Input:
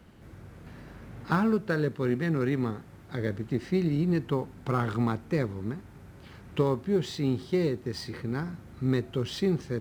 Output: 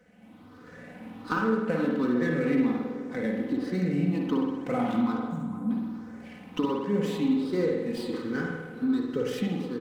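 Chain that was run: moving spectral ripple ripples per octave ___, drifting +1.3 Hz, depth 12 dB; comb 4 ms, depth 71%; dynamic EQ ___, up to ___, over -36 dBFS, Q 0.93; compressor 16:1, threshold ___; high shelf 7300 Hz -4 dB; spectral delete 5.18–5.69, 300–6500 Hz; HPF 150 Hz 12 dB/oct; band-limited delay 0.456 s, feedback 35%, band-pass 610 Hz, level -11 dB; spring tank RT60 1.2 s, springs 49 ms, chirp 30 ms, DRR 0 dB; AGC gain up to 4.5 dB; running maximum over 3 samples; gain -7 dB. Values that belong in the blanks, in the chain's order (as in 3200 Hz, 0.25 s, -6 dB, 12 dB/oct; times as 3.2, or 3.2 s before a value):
0.54, 270 Hz, +3 dB, -21 dBFS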